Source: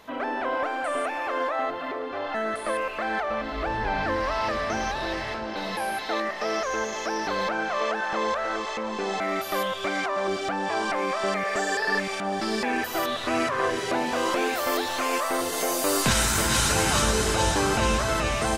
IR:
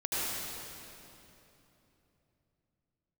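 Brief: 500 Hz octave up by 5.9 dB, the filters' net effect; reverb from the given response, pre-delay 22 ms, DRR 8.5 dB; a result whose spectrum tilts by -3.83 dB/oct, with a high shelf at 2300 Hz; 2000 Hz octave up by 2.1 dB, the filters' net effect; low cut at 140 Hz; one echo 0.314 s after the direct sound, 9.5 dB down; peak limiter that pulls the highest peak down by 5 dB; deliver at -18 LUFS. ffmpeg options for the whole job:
-filter_complex "[0:a]highpass=140,equalizer=f=500:t=o:g=7.5,equalizer=f=2k:t=o:g=6,highshelf=f=2.3k:g=-8,alimiter=limit=-13.5dB:level=0:latency=1,aecho=1:1:314:0.335,asplit=2[a][b];[1:a]atrim=start_sample=2205,adelay=22[c];[b][c]afir=irnorm=-1:irlink=0,volume=-17dB[d];[a][d]amix=inputs=2:normalize=0,volume=5.5dB"

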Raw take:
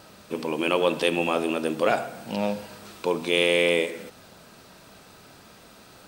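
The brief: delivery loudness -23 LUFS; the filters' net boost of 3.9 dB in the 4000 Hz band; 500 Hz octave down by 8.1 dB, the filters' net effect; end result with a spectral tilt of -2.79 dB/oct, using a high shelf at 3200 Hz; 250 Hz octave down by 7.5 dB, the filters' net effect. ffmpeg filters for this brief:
-af "equalizer=f=250:t=o:g=-7.5,equalizer=f=500:t=o:g=-7.5,highshelf=f=3.2k:g=-5,equalizer=f=4k:t=o:g=9,volume=3.5dB"

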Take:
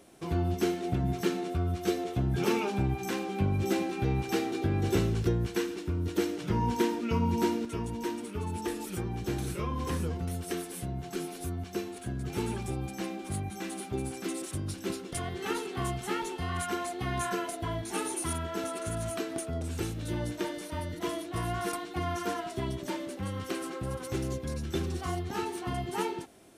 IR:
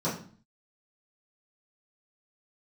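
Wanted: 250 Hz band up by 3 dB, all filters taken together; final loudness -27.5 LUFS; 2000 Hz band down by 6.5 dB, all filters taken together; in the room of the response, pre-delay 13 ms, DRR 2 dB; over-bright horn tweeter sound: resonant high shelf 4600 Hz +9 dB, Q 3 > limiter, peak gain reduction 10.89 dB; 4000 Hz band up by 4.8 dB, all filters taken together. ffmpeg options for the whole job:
-filter_complex "[0:a]equalizer=f=250:t=o:g=4.5,equalizer=f=2k:t=o:g=-7,equalizer=f=4k:t=o:g=3,asplit=2[a][b];[1:a]atrim=start_sample=2205,adelay=13[c];[b][c]afir=irnorm=-1:irlink=0,volume=-11dB[d];[a][d]amix=inputs=2:normalize=0,highshelf=f=4.6k:t=q:w=3:g=9,alimiter=limit=-18.5dB:level=0:latency=1"

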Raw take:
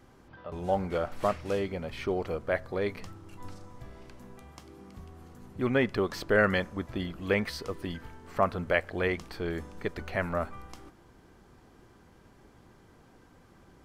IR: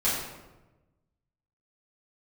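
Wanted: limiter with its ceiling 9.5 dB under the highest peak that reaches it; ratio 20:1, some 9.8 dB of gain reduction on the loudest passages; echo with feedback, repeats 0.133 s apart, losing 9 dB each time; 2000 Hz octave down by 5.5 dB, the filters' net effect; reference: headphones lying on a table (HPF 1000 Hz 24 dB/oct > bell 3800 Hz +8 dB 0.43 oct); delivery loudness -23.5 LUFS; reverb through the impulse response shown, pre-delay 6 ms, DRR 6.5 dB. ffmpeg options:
-filter_complex "[0:a]equalizer=f=2k:t=o:g=-7.5,acompressor=threshold=-30dB:ratio=20,alimiter=level_in=5dB:limit=-24dB:level=0:latency=1,volume=-5dB,aecho=1:1:133|266|399|532:0.355|0.124|0.0435|0.0152,asplit=2[a][b];[1:a]atrim=start_sample=2205,adelay=6[c];[b][c]afir=irnorm=-1:irlink=0,volume=-18dB[d];[a][d]amix=inputs=2:normalize=0,highpass=f=1k:w=0.5412,highpass=f=1k:w=1.3066,equalizer=f=3.8k:t=o:w=0.43:g=8,volume=23dB"

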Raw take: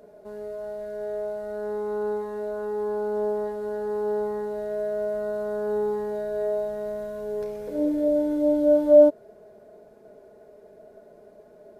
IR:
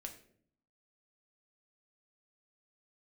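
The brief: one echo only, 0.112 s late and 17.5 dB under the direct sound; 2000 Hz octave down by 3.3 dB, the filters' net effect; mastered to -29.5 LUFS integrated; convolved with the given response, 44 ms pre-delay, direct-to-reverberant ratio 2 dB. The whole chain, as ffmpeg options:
-filter_complex "[0:a]equalizer=f=2k:t=o:g=-5.5,aecho=1:1:112:0.133,asplit=2[a][b];[1:a]atrim=start_sample=2205,adelay=44[c];[b][c]afir=irnorm=-1:irlink=0,volume=2dB[d];[a][d]amix=inputs=2:normalize=0,volume=-7dB"

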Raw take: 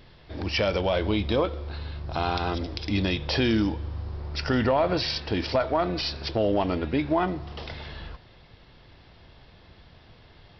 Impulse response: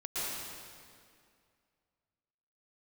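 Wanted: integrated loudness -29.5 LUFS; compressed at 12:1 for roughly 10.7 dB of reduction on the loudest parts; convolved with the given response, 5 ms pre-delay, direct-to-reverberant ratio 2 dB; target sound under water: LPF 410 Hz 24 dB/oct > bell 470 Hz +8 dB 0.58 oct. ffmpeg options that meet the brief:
-filter_complex "[0:a]acompressor=threshold=-30dB:ratio=12,asplit=2[a][b];[1:a]atrim=start_sample=2205,adelay=5[c];[b][c]afir=irnorm=-1:irlink=0,volume=-7.5dB[d];[a][d]amix=inputs=2:normalize=0,lowpass=f=410:w=0.5412,lowpass=f=410:w=1.3066,equalizer=f=470:t=o:w=0.58:g=8,volume=5.5dB"

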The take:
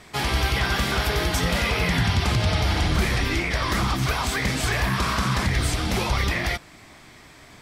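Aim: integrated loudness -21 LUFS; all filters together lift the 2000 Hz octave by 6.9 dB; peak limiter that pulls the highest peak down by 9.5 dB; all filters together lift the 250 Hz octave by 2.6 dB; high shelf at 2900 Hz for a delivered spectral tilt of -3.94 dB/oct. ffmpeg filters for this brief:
-af "equalizer=f=250:t=o:g=3.5,equalizer=f=2k:t=o:g=5,highshelf=f=2.9k:g=8.5,volume=3dB,alimiter=limit=-13.5dB:level=0:latency=1"

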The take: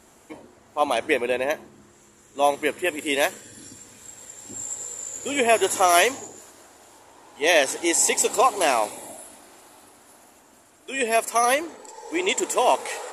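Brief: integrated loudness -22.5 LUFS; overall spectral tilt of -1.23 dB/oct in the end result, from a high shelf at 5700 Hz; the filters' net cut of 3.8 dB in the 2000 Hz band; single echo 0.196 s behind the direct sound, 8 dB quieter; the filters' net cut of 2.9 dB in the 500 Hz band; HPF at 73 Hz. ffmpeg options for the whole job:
-af "highpass=73,equalizer=f=500:t=o:g=-3.5,equalizer=f=2k:t=o:g=-3.5,highshelf=f=5.7k:g=-7,aecho=1:1:196:0.398,volume=2.5dB"

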